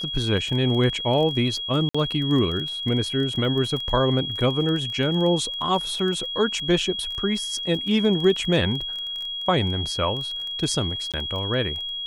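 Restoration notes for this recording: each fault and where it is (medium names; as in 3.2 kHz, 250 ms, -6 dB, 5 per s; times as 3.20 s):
crackle 16 per s -29 dBFS
whine 3.3 kHz -28 dBFS
1.89–1.95 s: dropout 55 ms
11.12–11.14 s: dropout 17 ms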